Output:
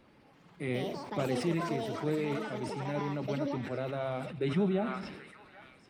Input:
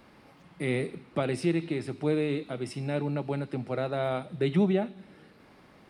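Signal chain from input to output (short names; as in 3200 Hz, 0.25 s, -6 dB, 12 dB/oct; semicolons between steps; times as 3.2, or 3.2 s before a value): bin magnitudes rounded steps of 15 dB; high shelf 6000 Hz -5.5 dB; on a send: delay with a stepping band-pass 0.783 s, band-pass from 1400 Hz, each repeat 0.7 oct, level -6 dB; on the sum: echoes that change speed 0.334 s, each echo +7 st, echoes 3, each echo -6 dB; sustainer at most 46 dB/s; gain -5 dB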